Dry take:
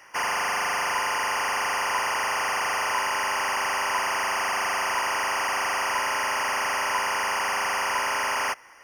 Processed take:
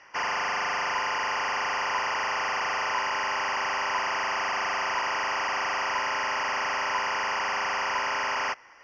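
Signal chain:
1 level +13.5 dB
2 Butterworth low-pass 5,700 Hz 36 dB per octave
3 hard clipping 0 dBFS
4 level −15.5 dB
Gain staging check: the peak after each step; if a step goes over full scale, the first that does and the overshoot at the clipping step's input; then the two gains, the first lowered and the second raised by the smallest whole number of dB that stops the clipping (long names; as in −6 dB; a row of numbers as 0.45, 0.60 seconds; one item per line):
−6.0, −5.0, −5.0, −20.5 dBFS
no step passes full scale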